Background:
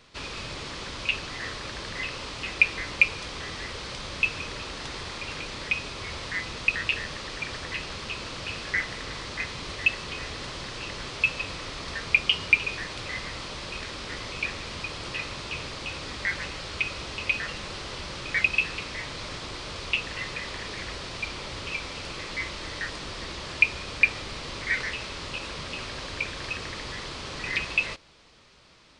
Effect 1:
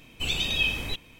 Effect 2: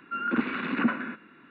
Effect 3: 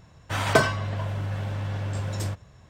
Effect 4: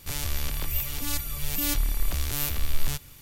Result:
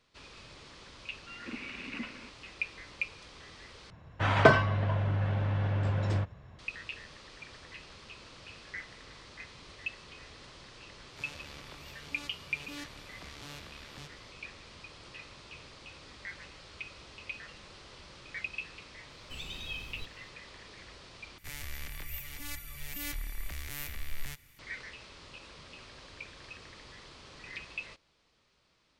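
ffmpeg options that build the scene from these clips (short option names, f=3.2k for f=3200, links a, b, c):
-filter_complex "[4:a]asplit=2[a][b];[0:a]volume=-15dB[c];[2:a]highshelf=f=1.9k:t=q:w=3:g=7.5[d];[3:a]lowpass=3k[e];[a]highpass=150,lowpass=4.4k[f];[1:a]asubboost=boost=4:cutoff=210[g];[b]equalizer=f=2k:t=o:w=0.73:g=11.5[h];[c]asplit=3[i][j][k];[i]atrim=end=3.904[l];[e]atrim=end=2.69[m];[j]atrim=start=6.586:end=21.384[n];[h]atrim=end=3.21,asetpts=PTS-STARTPTS,volume=-13dB[o];[k]atrim=start=24.586[p];[d]atrim=end=1.5,asetpts=PTS-STARTPTS,volume=-16dB,afade=t=in:d=0.004:c=hsin,afade=t=out:st=1.496:d=0.004:c=hsin,adelay=1150[q];[f]atrim=end=3.21,asetpts=PTS-STARTPTS,volume=-11.5dB,afade=t=in:d=0.004:c=hsin,afade=t=out:st=3.206:d=0.004:c=hsin,adelay=11100[r];[g]atrim=end=1.19,asetpts=PTS-STARTPTS,volume=-15.5dB,afade=t=in:d=0.004:c=hsin,afade=t=out:st=1.186:d=0.004:c=hsin,adelay=19100[s];[l][m]acrossfade=d=0.004:c1=hsin:c2=hsin[t];[t][n]acrossfade=d=0.004:c1=hsin:c2=hsin[u];[u][o]acrossfade=d=0.004:c1=hsin:c2=hsin[v];[v][p]acrossfade=d=0.004:c1=hsin:c2=hsin[w];[w][q][r][s]amix=inputs=4:normalize=0"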